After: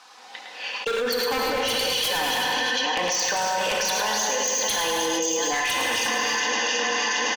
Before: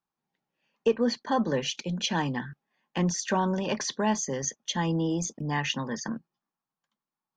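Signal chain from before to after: backward echo that repeats 365 ms, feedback 43%, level -9 dB; Chebyshev band-pass 560–4900 Hz, order 2; tilt EQ +2 dB/octave; comb 4 ms, depth 60%; wavefolder -23.5 dBFS; delay 107 ms -7 dB; gated-style reverb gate 380 ms flat, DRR 0.5 dB; level flattener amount 100%

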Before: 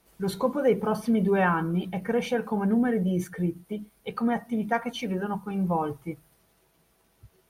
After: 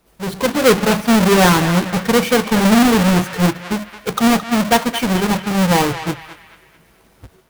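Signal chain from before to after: square wave that keeps the level; band-passed feedback delay 219 ms, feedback 45%, band-pass 2 kHz, level -8.5 dB; level rider gain up to 8.5 dB

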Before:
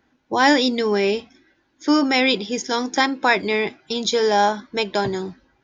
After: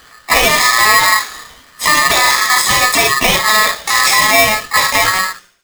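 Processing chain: fade out at the end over 1.27 s; dynamic bell 890 Hz, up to +6 dB, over -33 dBFS, Q 3.2; compression 8:1, threshold -28 dBFS, peak gain reduction 19 dB; LFO notch saw up 5.2 Hz 540–3800 Hz; harmony voices +7 st -8 dB; feedback echo behind a high-pass 72 ms, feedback 45%, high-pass 2.8 kHz, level -6 dB; gated-style reverb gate 80 ms flat, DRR 2 dB; loudness maximiser +21.5 dB; polarity switched at an audio rate 1.5 kHz; trim -1 dB

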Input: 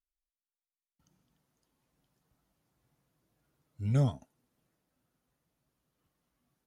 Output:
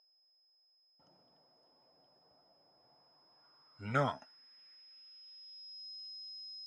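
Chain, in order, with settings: whistle 5.1 kHz -60 dBFS; band-pass sweep 650 Hz -> 4.4 kHz, 2.74–5.88 s; trim +16.5 dB

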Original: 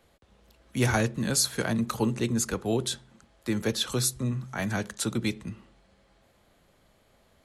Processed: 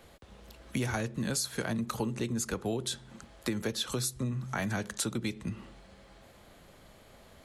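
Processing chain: compression 6:1, threshold -38 dBFS, peak gain reduction 17 dB; trim +7.5 dB

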